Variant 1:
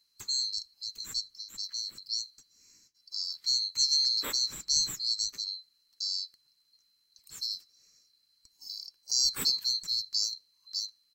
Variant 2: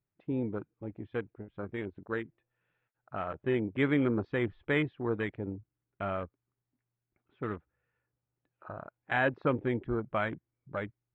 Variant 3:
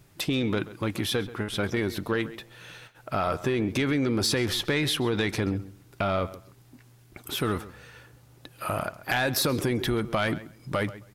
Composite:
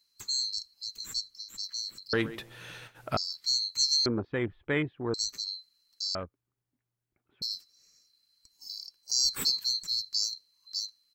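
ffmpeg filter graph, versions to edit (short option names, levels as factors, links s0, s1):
-filter_complex "[1:a]asplit=2[s0][s1];[0:a]asplit=4[s2][s3][s4][s5];[s2]atrim=end=2.132[s6];[2:a]atrim=start=2.128:end=3.172[s7];[s3]atrim=start=3.168:end=4.062[s8];[s0]atrim=start=4.058:end=5.142[s9];[s4]atrim=start=5.138:end=6.152[s10];[s1]atrim=start=6.148:end=7.422[s11];[s5]atrim=start=7.418[s12];[s6][s7]acrossfade=d=0.004:c1=hsin:c2=hsin[s13];[s13][s8]acrossfade=d=0.004:c1=hsin:c2=hsin[s14];[s14][s9]acrossfade=d=0.004:c1=hsin:c2=hsin[s15];[s15][s10]acrossfade=d=0.004:c1=hsin:c2=hsin[s16];[s16][s11]acrossfade=d=0.004:c1=hsin:c2=hsin[s17];[s17][s12]acrossfade=d=0.004:c1=hsin:c2=hsin"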